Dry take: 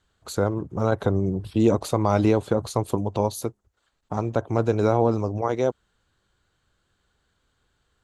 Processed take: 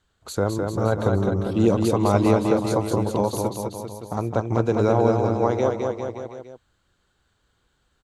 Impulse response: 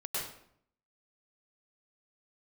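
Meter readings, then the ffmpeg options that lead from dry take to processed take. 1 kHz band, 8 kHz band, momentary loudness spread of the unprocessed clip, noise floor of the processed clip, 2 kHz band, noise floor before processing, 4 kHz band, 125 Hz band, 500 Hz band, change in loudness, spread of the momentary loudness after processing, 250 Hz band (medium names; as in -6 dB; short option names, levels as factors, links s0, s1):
+2.5 dB, +2.0 dB, 6 LU, -69 dBFS, +2.0 dB, -73 dBFS, +2.0 dB, +1.5 dB, +2.5 dB, +1.5 dB, 13 LU, +2.0 dB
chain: -af "aecho=1:1:210|399|569.1|722.2|860:0.631|0.398|0.251|0.158|0.1"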